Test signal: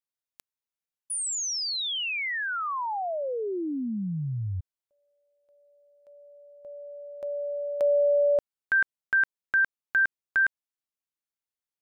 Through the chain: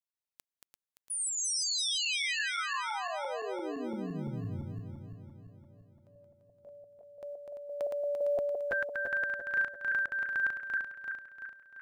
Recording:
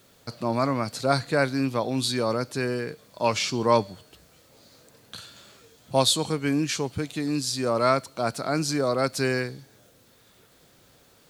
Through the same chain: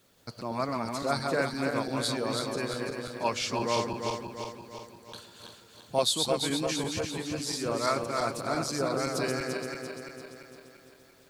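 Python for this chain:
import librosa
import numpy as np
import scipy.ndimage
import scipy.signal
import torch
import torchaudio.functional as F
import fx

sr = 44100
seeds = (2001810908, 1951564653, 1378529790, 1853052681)

y = fx.reverse_delay_fb(x, sr, ms=171, feedback_pct=72, wet_db=-3)
y = fx.hpss(y, sr, part='harmonic', gain_db=-6)
y = fx.quant_float(y, sr, bits=6)
y = y * 10.0 ** (-4.5 / 20.0)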